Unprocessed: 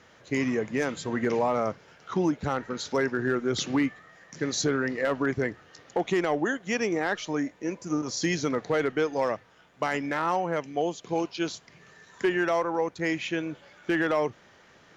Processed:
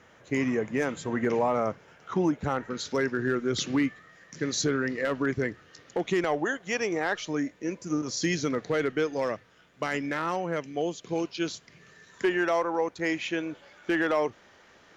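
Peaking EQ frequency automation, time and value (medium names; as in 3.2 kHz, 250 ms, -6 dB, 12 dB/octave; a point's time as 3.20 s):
peaking EQ -6.5 dB 0.81 oct
4.5 kHz
from 2.70 s 790 Hz
from 6.24 s 230 Hz
from 7.21 s 840 Hz
from 12.23 s 140 Hz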